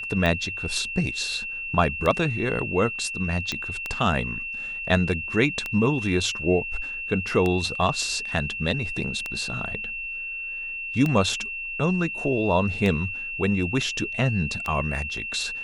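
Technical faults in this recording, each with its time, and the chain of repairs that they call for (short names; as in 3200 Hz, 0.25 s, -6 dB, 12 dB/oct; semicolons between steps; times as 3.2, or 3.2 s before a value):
tick 33 1/3 rpm -13 dBFS
tone 2700 Hz -30 dBFS
3.52 pop -13 dBFS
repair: de-click; notch 2700 Hz, Q 30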